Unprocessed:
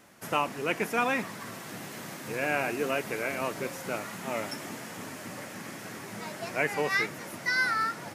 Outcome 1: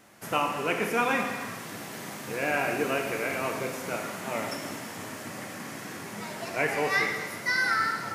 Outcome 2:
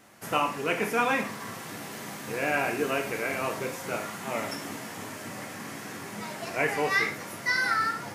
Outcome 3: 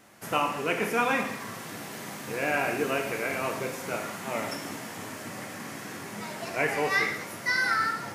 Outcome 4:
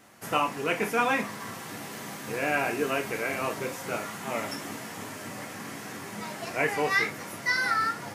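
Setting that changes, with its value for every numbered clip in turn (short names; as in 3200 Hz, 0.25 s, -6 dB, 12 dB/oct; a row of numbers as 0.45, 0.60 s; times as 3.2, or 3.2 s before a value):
non-linear reverb, gate: 470, 150, 270, 90 ms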